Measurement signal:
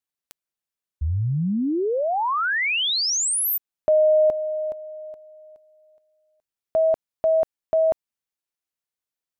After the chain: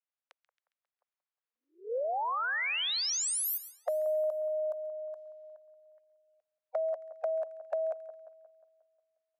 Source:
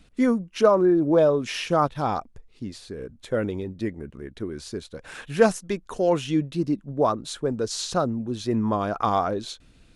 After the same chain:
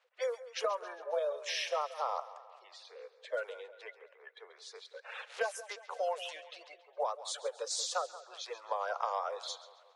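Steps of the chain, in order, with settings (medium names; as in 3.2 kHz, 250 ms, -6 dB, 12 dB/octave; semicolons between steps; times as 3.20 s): coarse spectral quantiser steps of 30 dB; steep high-pass 490 Hz 72 dB/octave; compression 6:1, threshold -27 dBFS; on a send: two-band feedback delay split 1.6 kHz, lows 179 ms, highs 136 ms, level -15 dB; on the sum: level-controlled noise filter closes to 2.5 kHz, open at -30 dBFS; trim -3.5 dB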